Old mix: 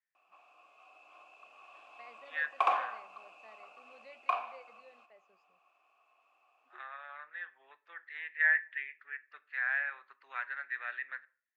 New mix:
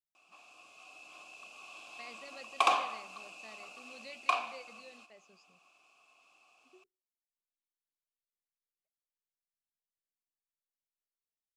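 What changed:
first voice: muted; master: remove three-band isolator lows -16 dB, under 440 Hz, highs -20 dB, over 2.2 kHz

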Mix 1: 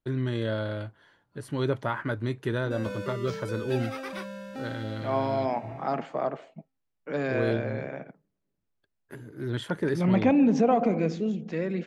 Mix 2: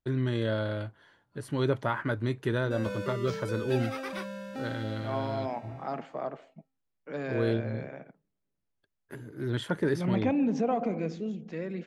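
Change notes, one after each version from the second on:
second voice -6.0 dB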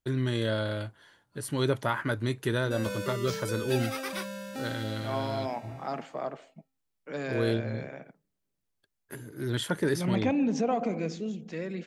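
master: remove low-pass 2.2 kHz 6 dB/octave

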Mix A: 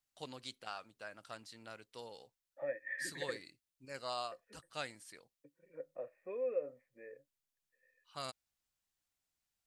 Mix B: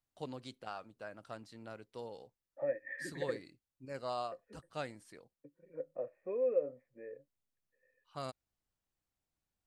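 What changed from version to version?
master: add tilt shelf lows +7 dB, about 1.2 kHz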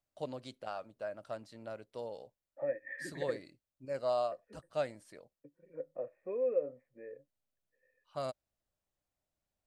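first voice: add peaking EQ 600 Hz +10.5 dB 0.36 oct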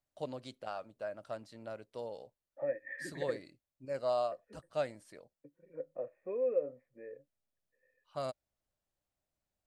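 no change

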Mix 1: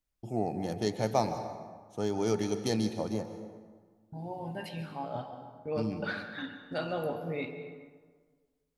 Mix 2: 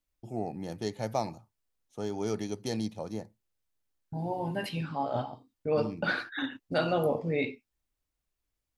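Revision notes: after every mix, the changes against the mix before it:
second voice +9.5 dB; reverb: off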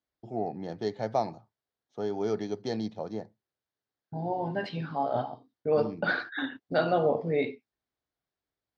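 master: add cabinet simulation 110–4900 Hz, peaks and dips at 420 Hz +4 dB, 700 Hz +5 dB, 1.6 kHz +3 dB, 2.6 kHz -7 dB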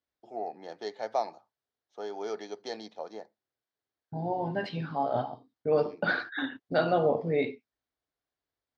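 first voice: add high-pass 530 Hz 12 dB/octave

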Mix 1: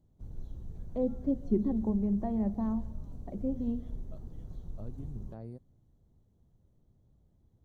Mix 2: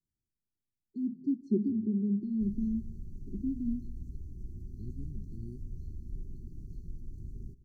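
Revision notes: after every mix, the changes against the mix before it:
background: entry +2.20 s; master: add brick-wall FIR band-stop 420–4100 Hz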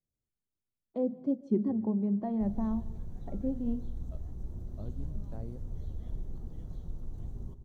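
background: send +11.0 dB; master: remove brick-wall FIR band-stop 420–4100 Hz

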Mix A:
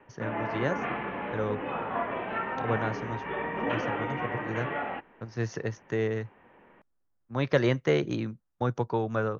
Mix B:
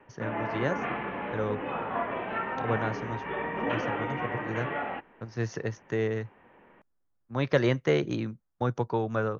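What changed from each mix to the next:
no change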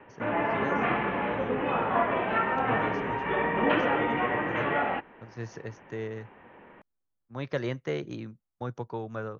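speech -7.0 dB; background +5.5 dB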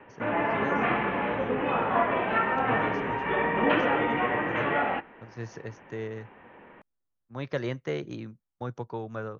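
background: send +8.5 dB

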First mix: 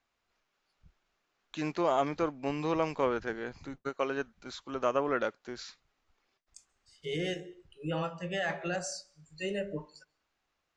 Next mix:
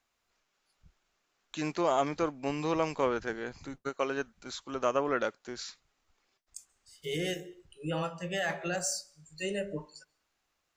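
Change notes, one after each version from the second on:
master: remove distance through air 89 m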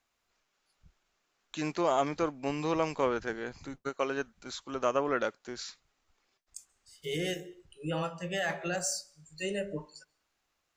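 no change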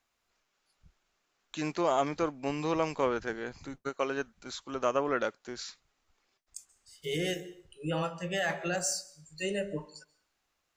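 second voice: send +8.5 dB

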